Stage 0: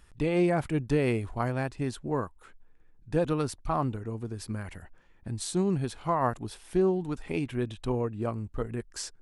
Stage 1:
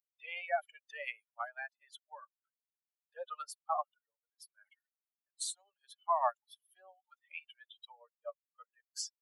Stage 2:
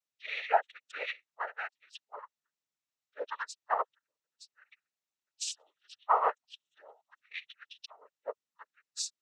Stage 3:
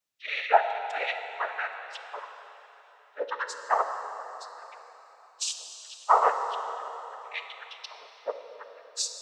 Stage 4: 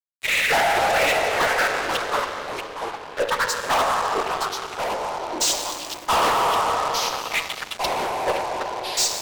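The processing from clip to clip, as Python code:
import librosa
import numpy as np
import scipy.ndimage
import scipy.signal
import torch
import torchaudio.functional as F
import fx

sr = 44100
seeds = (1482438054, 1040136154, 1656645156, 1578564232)

y1 = fx.bin_expand(x, sr, power=3.0)
y1 = scipy.signal.sosfilt(scipy.signal.butter(16, 580.0, 'highpass', fs=sr, output='sos'), y1)
y1 = y1 * 10.0 ** (2.0 / 20.0)
y2 = fx.noise_vocoder(y1, sr, seeds[0], bands=12)
y2 = y2 * 10.0 ** (5.0 / 20.0)
y3 = fx.rev_plate(y2, sr, seeds[1], rt60_s=3.8, hf_ratio=0.9, predelay_ms=0, drr_db=6.0)
y3 = y3 * 10.0 ** (5.5 / 20.0)
y4 = fx.fuzz(y3, sr, gain_db=36.0, gate_db=-44.0)
y4 = fx.echo_pitch(y4, sr, ms=126, semitones=-4, count=2, db_per_echo=-6.0)
y4 = y4 * 10.0 ** (-4.5 / 20.0)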